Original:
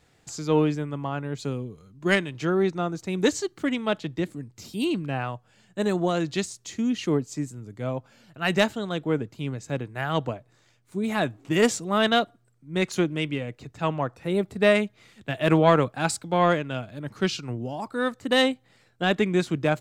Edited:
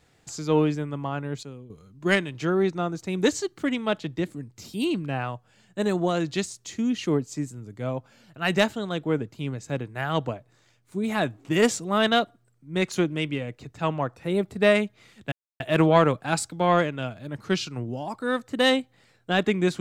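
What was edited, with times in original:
1.43–1.7 gain -11 dB
15.32 insert silence 0.28 s

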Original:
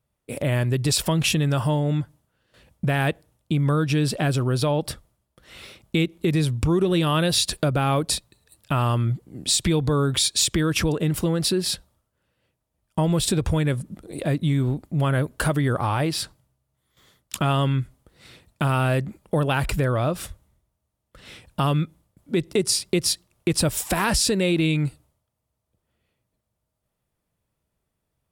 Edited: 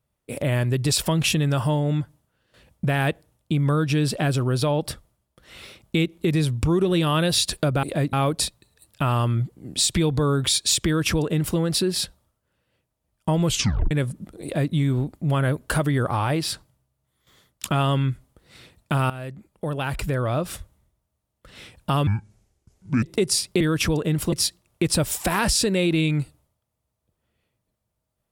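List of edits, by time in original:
10.56–11.28 copy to 22.98
13.17 tape stop 0.44 s
14.13–14.43 copy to 7.83
18.8–20.25 fade in, from -15.5 dB
21.77–22.4 speed 66%

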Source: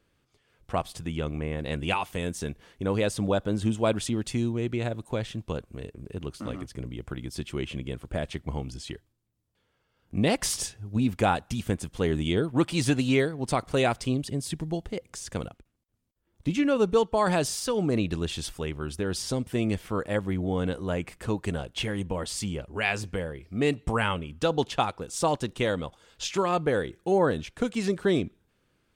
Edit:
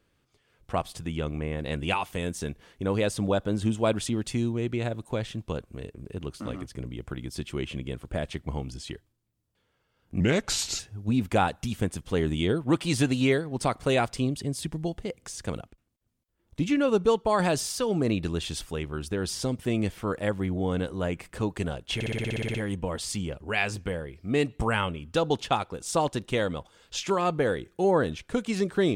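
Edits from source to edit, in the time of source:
10.2–10.67 speed 79%
21.82 stutter 0.06 s, 11 plays

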